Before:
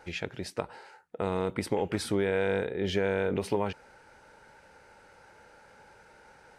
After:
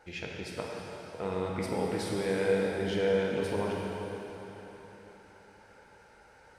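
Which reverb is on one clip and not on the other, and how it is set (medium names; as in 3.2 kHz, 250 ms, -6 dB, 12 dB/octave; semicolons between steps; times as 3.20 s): plate-style reverb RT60 3.9 s, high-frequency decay 0.95×, DRR -2.5 dB; trim -6 dB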